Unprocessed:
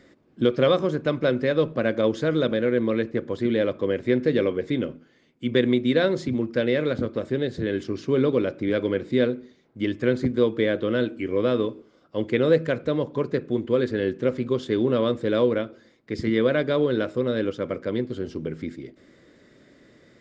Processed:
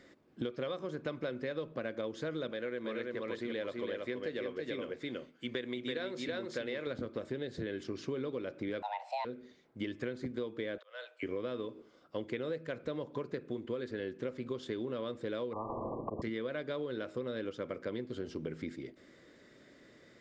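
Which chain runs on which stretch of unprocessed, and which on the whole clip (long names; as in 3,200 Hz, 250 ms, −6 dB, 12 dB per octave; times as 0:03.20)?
0:02.51–0:06.87: low-shelf EQ 340 Hz −9 dB + single-tap delay 330 ms −3.5 dB
0:08.82–0:09.25: high-pass filter 240 Hz 6 dB per octave + frequency shifter +420 Hz
0:10.78–0:11.23: volume swells 584 ms + Butterworth high-pass 560 Hz 48 dB per octave
0:15.53–0:16.22: volume swells 271 ms + linear-phase brick-wall low-pass 1,200 Hz + every bin compressed towards the loudest bin 10 to 1
whole clip: low-shelf EQ 340 Hz −5.5 dB; downward compressor 10 to 1, threshold −31 dBFS; level −3 dB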